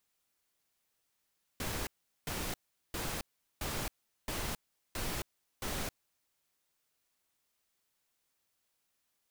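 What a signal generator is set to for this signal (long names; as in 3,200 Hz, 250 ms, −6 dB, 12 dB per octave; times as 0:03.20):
noise bursts pink, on 0.27 s, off 0.40 s, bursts 7, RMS −37 dBFS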